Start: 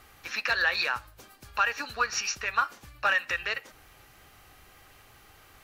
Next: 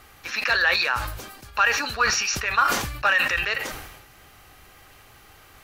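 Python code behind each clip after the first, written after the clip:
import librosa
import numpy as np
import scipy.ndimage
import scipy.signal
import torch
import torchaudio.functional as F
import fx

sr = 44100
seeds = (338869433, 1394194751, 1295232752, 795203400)

y = fx.sustainer(x, sr, db_per_s=50.0)
y = y * librosa.db_to_amplitude(4.5)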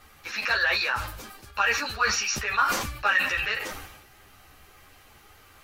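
y = fx.ensemble(x, sr)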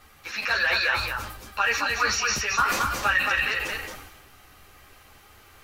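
y = x + 10.0 ** (-4.0 / 20.0) * np.pad(x, (int(222 * sr / 1000.0), 0))[:len(x)]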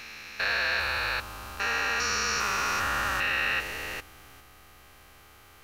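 y = fx.spec_steps(x, sr, hold_ms=400)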